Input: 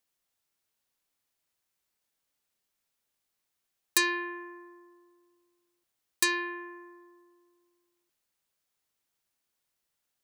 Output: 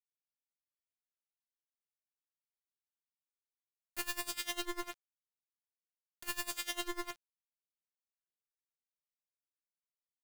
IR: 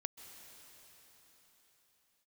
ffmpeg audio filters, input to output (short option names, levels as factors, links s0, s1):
-filter_complex "[0:a]lowpass=2800,asplit=2[s0][s1];[s1]acompressor=threshold=0.00794:ratio=6,volume=1.19[s2];[s0][s2]amix=inputs=2:normalize=0,alimiter=level_in=1.12:limit=0.0631:level=0:latency=1,volume=0.891,acontrast=87,aeval=exprs='0.133*(cos(1*acos(clip(val(0)/0.133,-1,1)))-cos(1*PI/2))+0.0376*(cos(3*acos(clip(val(0)/0.133,-1,1)))-cos(3*PI/2))+0.00841*(cos(5*acos(clip(val(0)/0.133,-1,1)))-cos(5*PI/2))+0.00299*(cos(6*acos(clip(val(0)/0.133,-1,1)))-cos(6*PI/2))':c=same,aresample=16000,asoftclip=type=tanh:threshold=0.0335,aresample=44100,acrusher=bits=5:dc=4:mix=0:aa=0.000001,aeval=exprs='(mod(89.1*val(0)+1,2)-1)/89.1':c=same,aeval=exprs='val(0)*pow(10,-21*(0.5-0.5*cos(2*PI*10*n/s))/20)':c=same,volume=4.22"